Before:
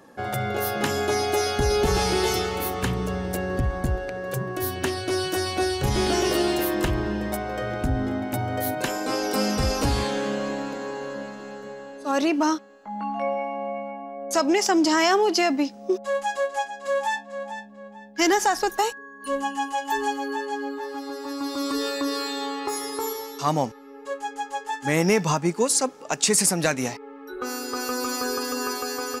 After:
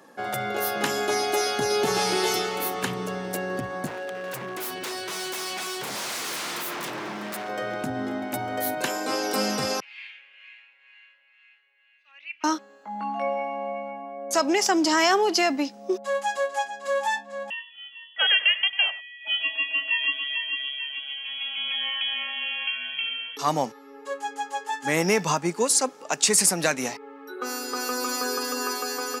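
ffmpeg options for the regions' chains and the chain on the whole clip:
-filter_complex "[0:a]asettb=1/sr,asplit=3[s0][s1][s2];[s0]atrim=end=3.864[s3];[s1]atrim=start=3.86:end=7.49,asetpts=PTS-STARTPTS,afade=t=in:d=0.004:c=qsin,afade=t=out:st=3.626:d=0.004:c=qsin,highpass=120,aeval=exprs='0.0447*(abs(mod(val(0)/0.0447+3,4)-2)-1)':c=same[s4];[s2]atrim=start=7.486[s5];[s3][s4]acrossfade=d=0.004:c1=hsin:c2=qsin[s6];[s6][s5]acrossfade=d=0.004:c1=qsin:c2=hsin,asettb=1/sr,asplit=3[s7][s8][s9];[s7]atrim=end=9.804[s10];[s8]atrim=start=9.8:end=12.44,asetpts=PTS-STARTPTS,afade=t=in:d=0.004:c=qsin,afade=t=out:st=2.636:d=0.004:c=qsin,acrossover=split=920[s11][s12];[s11]aeval=exprs='val(0)*(1-0.7/2+0.7/2*cos(2*PI*2.1*n/s))':c=same[s13];[s12]aeval=exprs='val(0)*(1-0.7/2-0.7/2*cos(2*PI*2.1*n/s))':c=same[s14];[s13][s14]amix=inputs=2:normalize=0,asuperpass=centerf=2400:order=4:qfactor=3.1[s15];[s9]atrim=start=12.436[s16];[s10][s15]acrossfade=d=0.004:c1=hsin:c2=qsin[s17];[s17][s16]acrossfade=d=0.004:c1=qsin:c2=hsin,asettb=1/sr,asplit=3[s18][s19][s20];[s18]atrim=end=17.504[s21];[s19]atrim=start=17.5:end=23.37,asetpts=PTS-STARTPTS,afade=t=in:d=0.004:c=qsin,afade=t=out:st=5.866:d=0.004:c=qsin,highpass=340,aecho=1:1:97:0.158,atrim=end_sample=258867,lowpass=f=3100:t=q:w=0.5098,lowpass=f=3100:t=q:w=0.6013,lowpass=f=3100:t=q:w=0.9,lowpass=f=3100:t=q:w=2.563,afreqshift=-3600[s22];[s20]atrim=start=23.366[s23];[s21][s22]acrossfade=d=0.004:c1=hsin:c2=qsin[s24];[s24][s23]acrossfade=d=0.004:c1=qsin:c2=hsin,highpass=f=140:w=0.5412,highpass=f=140:w=1.3066,lowshelf=f=420:g=-6,volume=1.12"

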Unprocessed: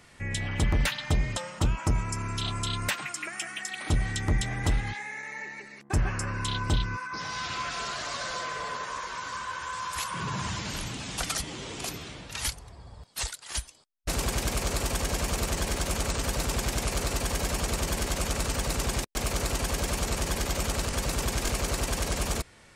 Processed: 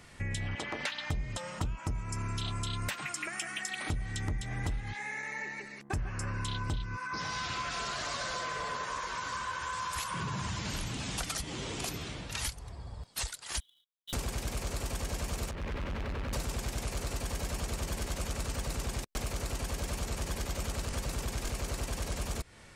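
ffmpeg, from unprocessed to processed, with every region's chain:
-filter_complex "[0:a]asettb=1/sr,asplit=3[s0][s1][s2];[s0]atrim=end=0.554[s3];[s1]atrim=start=0.55:end=1.1,asetpts=PTS-STARTPTS,afade=t=in:d=0.004:c=qsin,afade=t=out:st=0.546:d=0.004:c=qsin,aeval=exprs='val(0)+0.0158*(sin(2*PI*60*n/s)+sin(2*PI*2*60*n/s)/2+sin(2*PI*3*60*n/s)/3+sin(2*PI*4*60*n/s)/4+sin(2*PI*5*60*n/s)/5)':c=same,highpass=440,lowpass=6400[s4];[s2]atrim=start=1.096[s5];[s3][s4]acrossfade=d=0.004:c1=hsin:c2=qsin[s6];[s6][s5]acrossfade=d=0.004:c1=qsin:c2=hsin,asettb=1/sr,asplit=3[s7][s8][s9];[s7]atrim=end=13.604[s10];[s8]atrim=start=13.6:end=14.13,asetpts=PTS-STARTPTS,afade=t=in:d=0.004:c=qsin,afade=t=out:st=0.526:d=0.004:c=qsin,asuperpass=centerf=3400:order=20:qfactor=3.3,acrusher=bits=2:mode=log:mix=0:aa=0.000001[s11];[s9]atrim=start=14.126[s12];[s10][s11]acrossfade=d=0.004:c1=hsin:c2=qsin[s13];[s13][s12]acrossfade=d=0.004:c1=qsin:c2=hsin,asettb=1/sr,asplit=3[s14][s15][s16];[s14]atrim=end=15.514[s17];[s15]atrim=start=15.51:end=16.33,asetpts=PTS-STARTPTS,afade=t=in:d=0.004:c=qsin,afade=t=out:st=0.816:d=0.004:c=qsin,lowpass=f=2600:w=0.5412,lowpass=f=2600:w=1.3066,equalizer=f=750:t=o:w=0.31:g=-9,asoftclip=type=hard:threshold=0.0168[s18];[s16]atrim=start=16.326[s19];[s17][s18]acrossfade=d=0.004:c1=hsin:c2=qsin[s20];[s20][s19]acrossfade=d=0.004:c1=qsin:c2=hsin,lowshelf=f=150:g=4.5,acompressor=threshold=0.0251:ratio=6"

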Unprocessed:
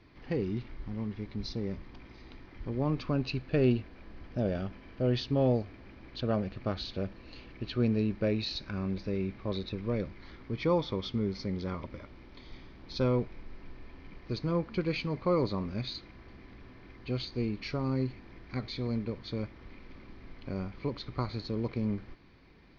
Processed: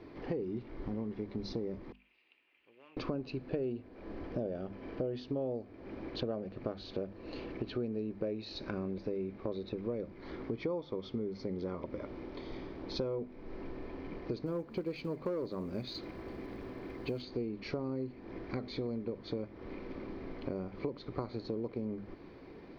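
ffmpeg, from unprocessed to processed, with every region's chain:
-filter_complex "[0:a]asettb=1/sr,asplit=3[s0][s1][s2];[s0]atrim=end=1.924[s3];[s1]atrim=start=1.92:end=2.97,asetpts=PTS-STARTPTS,afade=t=in:d=0.004:c=qsin,afade=t=out:st=1.046:d=0.004:c=qsin,volume=20,asoftclip=hard,volume=0.0501,bandpass=f=2700:t=q:w=12[s4];[s2]atrim=start=2.966[s5];[s3][s4]acrossfade=d=0.004:c1=hsin:c2=qsin[s6];[s6][s5]acrossfade=d=0.004:c1=qsin:c2=hsin,asettb=1/sr,asplit=3[s7][s8][s9];[s7]atrim=end=14.464[s10];[s8]atrim=start=14.46:end=17.22,asetpts=PTS-STARTPTS,afade=t=in:d=0.004:c=qsin,afade=t=out:st=2.756:d=0.004:c=qsin,highshelf=f=5800:g=6.5,acrusher=bits=7:mode=log:mix=0:aa=0.000001,asoftclip=type=hard:threshold=0.0562[s11];[s9]atrim=start=17.216[s12];[s10][s11]acrossfade=d=0.004:c1=hsin:c2=qsin[s13];[s13][s12]acrossfade=d=0.004:c1=qsin:c2=hsin,equalizer=f=430:w=0.5:g=14.5,bandreject=f=50:t=h:w=6,bandreject=f=100:t=h:w=6,bandreject=f=150:t=h:w=6,bandreject=f=200:t=h:w=6,bandreject=f=250:t=h:w=6,acompressor=threshold=0.02:ratio=6,volume=0.891"

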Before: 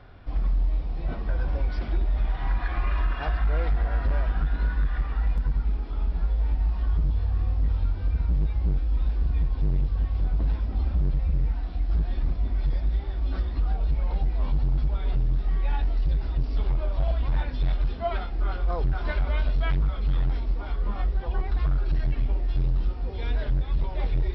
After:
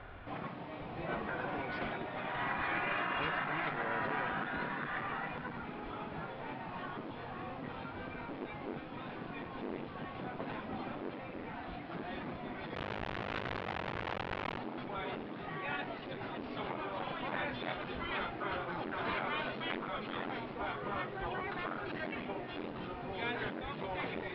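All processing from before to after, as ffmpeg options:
-filter_complex "[0:a]asettb=1/sr,asplit=3[s0][s1][s2];[s0]atrim=end=12.754[s3];[s1]atrim=start=12.75:end=14.58,asetpts=PTS-STARTPTS,afade=t=in:d=0.004:c=qsin,afade=t=out:st=1.826:d=0.004:c=qsin,acompressor=threshold=0.0631:ratio=4:attack=3.2:release=140:knee=1:detection=peak,acrusher=bits=3:dc=4:mix=0:aa=0.000001[s4];[s2]atrim=start=14.576[s5];[s3][s4]acrossfade=d=0.004:c1=hsin:c2=qsin[s6];[s6][s5]acrossfade=d=0.004:c1=qsin:c2=hsin,lowpass=f=3100:w=0.5412,lowpass=f=3100:w=1.3066,lowshelf=f=350:g=-10,afftfilt=real='re*lt(hypot(re,im),0.0562)':imag='im*lt(hypot(re,im),0.0562)':win_size=1024:overlap=0.75,volume=1.88"

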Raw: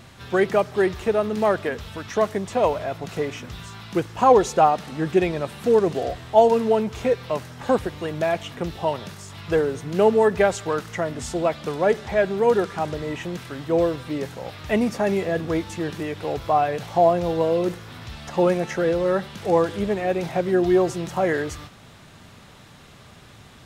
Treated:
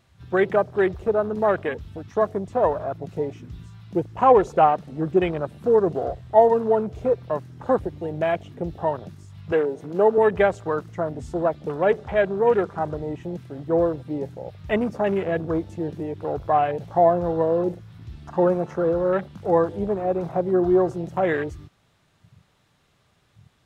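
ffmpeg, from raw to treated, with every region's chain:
-filter_complex "[0:a]asettb=1/sr,asplit=3[s0][s1][s2];[s0]atrim=end=9.524[s3];[s1]atrim=start=9.52:end=10.18,asetpts=PTS-STARTPTS,afade=t=in:d=0.004:c=qsin,afade=t=out:st=0.656:d=0.004:c=qsin,highpass=230,agate=range=0.447:threshold=0.0282:ratio=16:release=100:detection=peak,acompressor=mode=upward:threshold=0.0794:ratio=2.5:attack=3.2:release=140:knee=2.83:detection=peak[s4];[s2]atrim=start=10.176[s5];[s3][s4]acrossfade=d=0.004:c1=hsin:c2=qsin[s6];[s6][s5]acrossfade=d=0.004:c1=qsin:c2=hsin,afwtdn=0.0316,equalizer=f=230:w=4:g=-4"

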